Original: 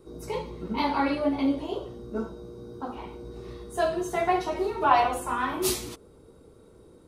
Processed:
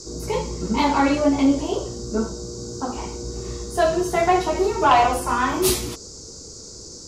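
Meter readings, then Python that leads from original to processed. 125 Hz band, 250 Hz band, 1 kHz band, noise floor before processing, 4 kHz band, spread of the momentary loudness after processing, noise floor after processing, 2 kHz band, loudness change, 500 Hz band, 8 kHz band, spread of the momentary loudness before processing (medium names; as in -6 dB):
+10.0 dB, +7.5 dB, +6.0 dB, -54 dBFS, +8.0 dB, 18 LU, -40 dBFS, +6.0 dB, +6.5 dB, +7.0 dB, +9.0 dB, 19 LU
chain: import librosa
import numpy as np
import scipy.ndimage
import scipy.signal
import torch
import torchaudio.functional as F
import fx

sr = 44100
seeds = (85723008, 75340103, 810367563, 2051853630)

y = fx.dmg_noise_band(x, sr, seeds[0], low_hz=4500.0, high_hz=7500.0, level_db=-48.0)
y = fx.fold_sine(y, sr, drive_db=5, ceiling_db=-7.0)
y = fx.low_shelf(y, sr, hz=150.0, db=5.5)
y = y * 10.0 ** (-2.0 / 20.0)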